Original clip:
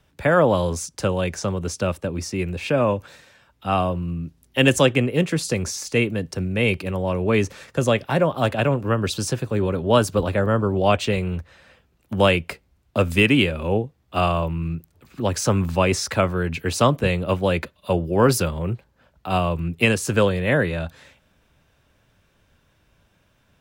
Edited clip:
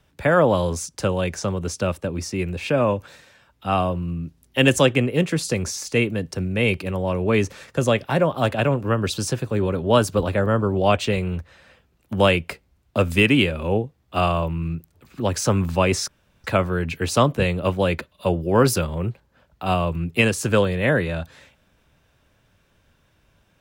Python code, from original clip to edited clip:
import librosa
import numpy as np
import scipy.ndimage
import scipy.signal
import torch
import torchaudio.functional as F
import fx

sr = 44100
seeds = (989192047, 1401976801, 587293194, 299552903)

y = fx.edit(x, sr, fx.insert_room_tone(at_s=16.08, length_s=0.36), tone=tone)